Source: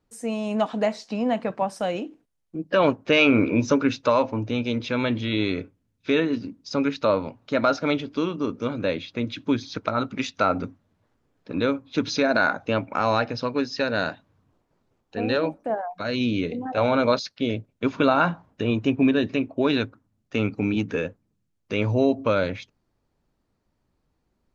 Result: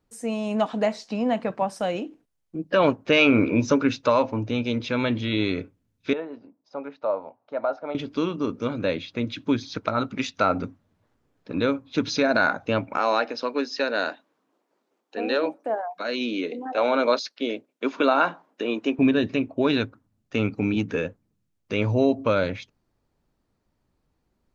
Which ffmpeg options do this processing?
-filter_complex "[0:a]asettb=1/sr,asplit=3[s0][s1][s2];[s0]atrim=end=6.134[s3];[s1]atrim=start=6.13:end=7.95,asetpts=PTS-STARTPTS,afade=t=in:d=0.004:c=qsin,afade=t=out:st=1.816:d=0.004:c=qsin,bandpass=f=730:t=q:w=2.5[s4];[s2]atrim=start=7.946[s5];[s3][s4]acrossfade=d=0.004:c1=hsin:c2=qsin[s6];[s6][s5]acrossfade=d=0.004:c1=qsin:c2=hsin,asettb=1/sr,asplit=3[s7][s8][s9];[s7]atrim=end=12.974[s10];[s8]atrim=start=12.97:end=18.99,asetpts=PTS-STARTPTS,afade=t=in:d=0.004:c=qsin,afade=t=out:st=6.016:d=0.004:c=qsin,highpass=f=270:w=0.5412,highpass=f=270:w=1.3066[s11];[s9]atrim=start=18.986[s12];[s10][s11]acrossfade=d=0.004:c1=hsin:c2=qsin[s13];[s13][s12]acrossfade=d=0.004:c1=qsin:c2=hsin"

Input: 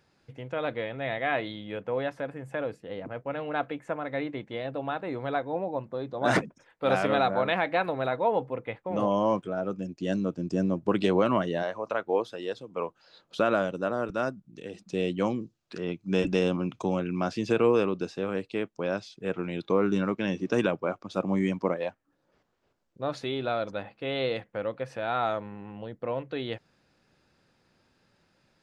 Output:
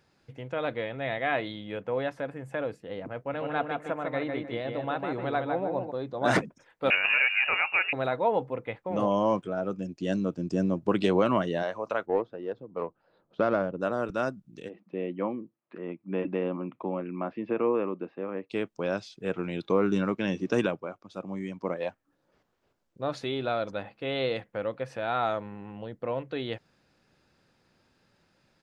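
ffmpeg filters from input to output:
-filter_complex "[0:a]asplit=3[s0][s1][s2];[s0]afade=t=out:st=3.32:d=0.02[s3];[s1]asplit=2[s4][s5];[s5]adelay=152,lowpass=f=3300:p=1,volume=0.631,asplit=2[s6][s7];[s7]adelay=152,lowpass=f=3300:p=1,volume=0.29,asplit=2[s8][s9];[s9]adelay=152,lowpass=f=3300:p=1,volume=0.29,asplit=2[s10][s11];[s11]adelay=152,lowpass=f=3300:p=1,volume=0.29[s12];[s4][s6][s8][s10][s12]amix=inputs=5:normalize=0,afade=t=in:st=3.32:d=0.02,afade=t=out:st=5.9:d=0.02[s13];[s2]afade=t=in:st=5.9:d=0.02[s14];[s3][s13][s14]amix=inputs=3:normalize=0,asettb=1/sr,asplit=3[s15][s16][s17];[s15]atrim=end=6.904[s18];[s16]atrim=start=6.9:end=7.93,asetpts=PTS-STARTPTS,afade=t=in:d=0.004:c=qsin,afade=t=out:st=1.026:d=0.004:c=qsin,lowpass=f=2600:t=q:w=0.5098,lowpass=f=2600:t=q:w=0.6013,lowpass=f=2600:t=q:w=0.9,lowpass=f=2600:t=q:w=2.563,afreqshift=-3000[s19];[s17]atrim=start=7.926[s20];[s18][s19]acrossfade=d=0.004:c1=hsin:c2=qsin[s21];[s21][s20]acrossfade=d=0.004:c1=qsin:c2=hsin,asplit=3[s22][s23][s24];[s22]afade=t=out:st=12.05:d=0.02[s25];[s23]adynamicsmooth=sensitivity=0.5:basefreq=1100,afade=t=in:st=12.05:d=0.02,afade=t=out:st=13.8:d=0.02[s26];[s24]afade=t=in:st=13.8:d=0.02[s27];[s25][s26][s27]amix=inputs=3:normalize=0,asplit=3[s28][s29][s30];[s28]afade=t=out:st=14.68:d=0.02[s31];[s29]highpass=260,equalizer=f=430:t=q:w=4:g=-5,equalizer=f=730:t=q:w=4:g=-4,equalizer=f=1500:t=q:w=4:g=-9,lowpass=f=2000:w=0.5412,lowpass=f=2000:w=1.3066,afade=t=in:st=14.68:d=0.02,afade=t=out:st=18.49:d=0.02[s32];[s30]afade=t=in:st=18.49:d=0.02[s33];[s31][s32][s33]amix=inputs=3:normalize=0,asplit=3[s34][s35][s36];[s34]atrim=end=20.9,asetpts=PTS-STARTPTS,afade=t=out:st=20.58:d=0.32:silence=0.354813[s37];[s35]atrim=start=20.9:end=21.55,asetpts=PTS-STARTPTS,volume=0.355[s38];[s36]atrim=start=21.55,asetpts=PTS-STARTPTS,afade=t=in:d=0.32:silence=0.354813[s39];[s37][s38][s39]concat=n=3:v=0:a=1"

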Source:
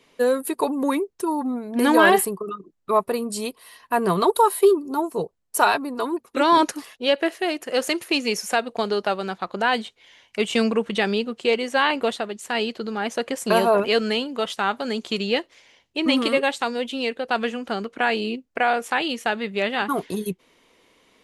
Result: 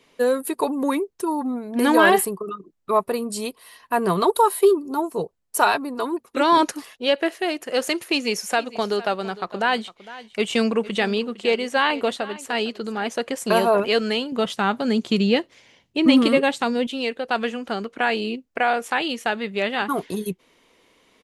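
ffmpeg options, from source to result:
-filter_complex "[0:a]asplit=3[s0][s1][s2];[s0]afade=t=out:st=8.57:d=0.02[s3];[s1]aecho=1:1:457:0.133,afade=t=in:st=8.57:d=0.02,afade=t=out:st=13.08:d=0.02[s4];[s2]afade=t=in:st=13.08:d=0.02[s5];[s3][s4][s5]amix=inputs=3:normalize=0,asettb=1/sr,asplit=3[s6][s7][s8];[s6]atrim=end=14.324[s9];[s7]atrim=start=14.32:end=16.87,asetpts=PTS-STARTPTS,afade=t=in:d=0.004:c=qsin,afade=t=out:st=2.546:d=0.004:c=qsin,equalizer=f=150:t=o:w=2:g=11[s10];[s8]atrim=start=16.866[s11];[s9][s10]acrossfade=d=0.004:c1=hsin:c2=qsin[s12];[s12][s11]acrossfade=d=0.004:c1=qsin:c2=hsin"

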